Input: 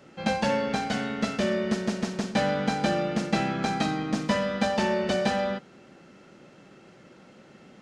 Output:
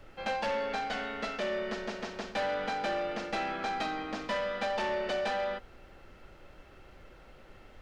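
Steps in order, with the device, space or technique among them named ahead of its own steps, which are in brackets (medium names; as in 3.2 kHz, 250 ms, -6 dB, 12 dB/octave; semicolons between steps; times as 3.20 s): aircraft cabin announcement (band-pass 440–4000 Hz; saturation -24.5 dBFS, distortion -15 dB; brown noise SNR 18 dB); trim -1.5 dB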